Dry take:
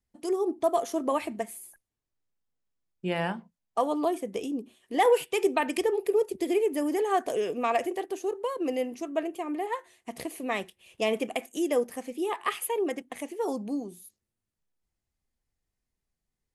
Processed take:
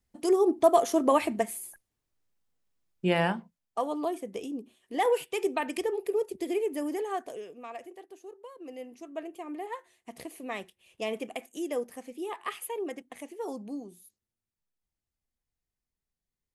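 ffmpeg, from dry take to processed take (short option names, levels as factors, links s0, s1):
-af "volume=5.01,afade=t=out:st=3.09:d=0.69:silence=0.375837,afade=t=out:st=6.87:d=0.63:silence=0.266073,afade=t=in:st=8.59:d=0.94:silence=0.334965"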